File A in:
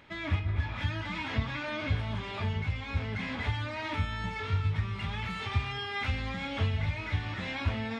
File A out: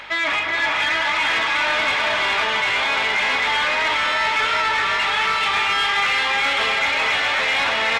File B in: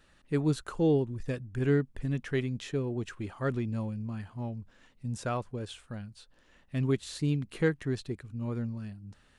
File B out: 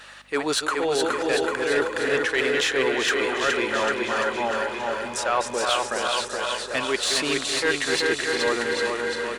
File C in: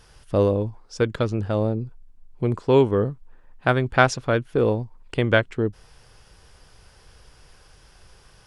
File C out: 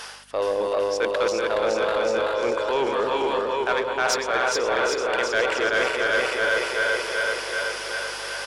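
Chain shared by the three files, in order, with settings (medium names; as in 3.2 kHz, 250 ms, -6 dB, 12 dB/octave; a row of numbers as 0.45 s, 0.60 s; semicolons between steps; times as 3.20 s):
backward echo that repeats 190 ms, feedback 76%, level -11 dB; high-pass 540 Hz 12 dB/octave; reverse; compression 12:1, threshold -38 dBFS; reverse; hum 50 Hz, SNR 25 dB; on a send: bouncing-ball echo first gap 420 ms, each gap 0.9×, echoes 5; on the sum: overdrive pedal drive 16 dB, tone 6.6 kHz, clips at -22 dBFS; peak normalisation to -12 dBFS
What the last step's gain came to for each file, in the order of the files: +12.5 dB, +12.5 dB, +11.5 dB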